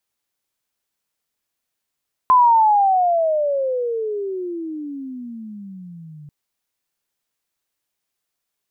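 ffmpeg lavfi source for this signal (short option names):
-f lavfi -i "aevalsrc='pow(10,(-8.5-28*t/3.99)/20)*sin(2*PI*1030*3.99/(-34*log(2)/12)*(exp(-34*log(2)/12*t/3.99)-1))':d=3.99:s=44100"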